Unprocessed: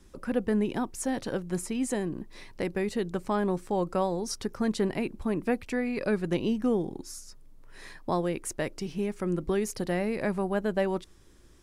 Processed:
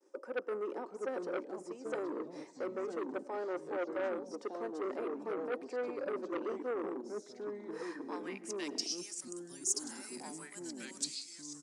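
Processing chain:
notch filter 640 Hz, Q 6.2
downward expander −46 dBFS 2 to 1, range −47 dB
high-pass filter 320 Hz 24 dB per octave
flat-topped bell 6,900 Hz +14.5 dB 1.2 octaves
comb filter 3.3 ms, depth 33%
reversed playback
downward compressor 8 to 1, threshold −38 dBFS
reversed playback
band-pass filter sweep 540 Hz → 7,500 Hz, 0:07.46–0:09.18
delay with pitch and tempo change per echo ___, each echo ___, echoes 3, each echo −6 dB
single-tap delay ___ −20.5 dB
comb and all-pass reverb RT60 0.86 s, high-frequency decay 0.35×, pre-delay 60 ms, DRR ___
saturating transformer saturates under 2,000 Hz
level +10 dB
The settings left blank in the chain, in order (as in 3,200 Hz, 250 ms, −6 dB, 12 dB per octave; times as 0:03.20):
585 ms, −3 semitones, 187 ms, 20 dB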